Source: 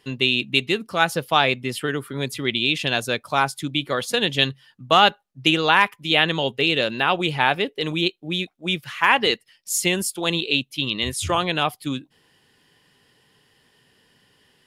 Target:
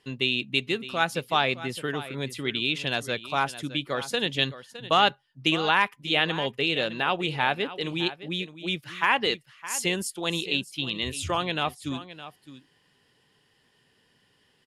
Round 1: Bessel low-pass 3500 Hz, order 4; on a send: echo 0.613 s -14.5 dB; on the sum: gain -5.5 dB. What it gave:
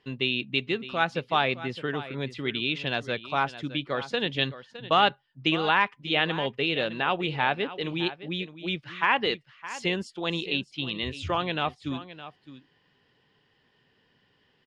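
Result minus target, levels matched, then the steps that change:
8000 Hz band -14.5 dB
change: Bessel low-pass 11000 Hz, order 4

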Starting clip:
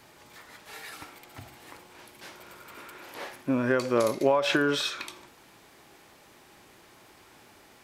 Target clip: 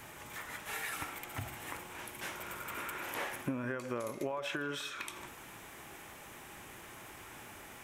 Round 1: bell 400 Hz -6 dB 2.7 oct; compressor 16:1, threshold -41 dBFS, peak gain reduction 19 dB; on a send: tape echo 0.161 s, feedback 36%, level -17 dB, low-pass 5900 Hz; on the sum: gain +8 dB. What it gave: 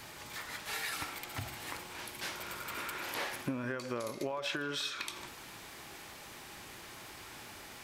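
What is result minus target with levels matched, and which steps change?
4000 Hz band +4.5 dB
add after compressor: bell 4500 Hz -12 dB 0.64 oct

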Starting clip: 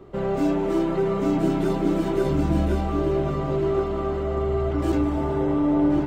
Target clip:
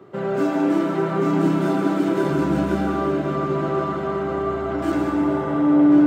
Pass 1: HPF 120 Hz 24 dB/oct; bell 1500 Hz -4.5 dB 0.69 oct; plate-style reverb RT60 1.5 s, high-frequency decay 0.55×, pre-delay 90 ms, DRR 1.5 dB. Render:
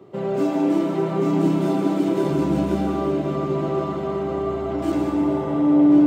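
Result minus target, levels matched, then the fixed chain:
2000 Hz band -7.0 dB
HPF 120 Hz 24 dB/oct; bell 1500 Hz +5.5 dB 0.69 oct; plate-style reverb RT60 1.5 s, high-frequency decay 0.55×, pre-delay 90 ms, DRR 1.5 dB

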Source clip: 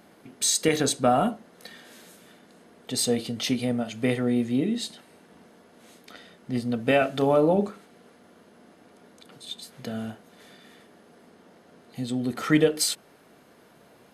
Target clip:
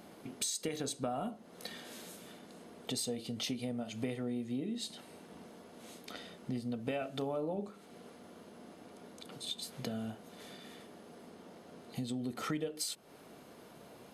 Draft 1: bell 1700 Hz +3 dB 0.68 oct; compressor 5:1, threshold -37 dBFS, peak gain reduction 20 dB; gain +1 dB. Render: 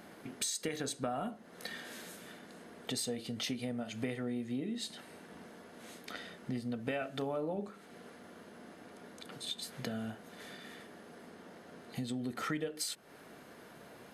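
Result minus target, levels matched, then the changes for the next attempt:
2000 Hz band +4.5 dB
change: bell 1700 Hz -5 dB 0.68 oct

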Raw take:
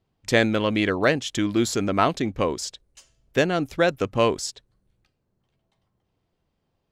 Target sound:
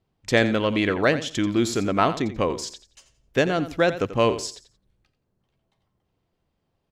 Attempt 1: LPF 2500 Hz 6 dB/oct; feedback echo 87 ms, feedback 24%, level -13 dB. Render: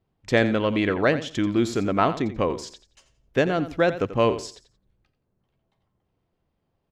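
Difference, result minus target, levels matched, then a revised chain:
8000 Hz band -6.5 dB
LPF 7900 Hz 6 dB/oct; feedback echo 87 ms, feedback 24%, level -13 dB

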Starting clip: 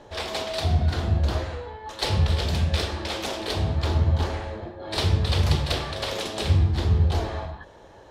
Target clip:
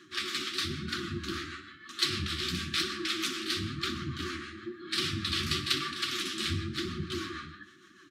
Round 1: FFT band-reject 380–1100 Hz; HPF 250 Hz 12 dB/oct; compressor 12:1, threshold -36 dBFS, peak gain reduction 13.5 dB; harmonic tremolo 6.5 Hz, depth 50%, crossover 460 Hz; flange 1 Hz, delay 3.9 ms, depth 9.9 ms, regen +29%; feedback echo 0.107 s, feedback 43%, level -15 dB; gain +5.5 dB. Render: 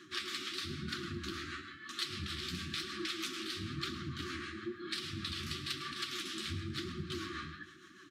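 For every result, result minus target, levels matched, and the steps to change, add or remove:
echo 48 ms late; compressor: peak gain reduction +13.5 dB
change: feedback echo 59 ms, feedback 43%, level -15 dB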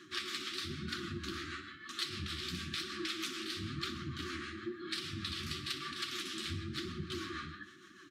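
compressor: peak gain reduction +13.5 dB
remove: compressor 12:1, threshold -36 dBFS, peak gain reduction 13.5 dB

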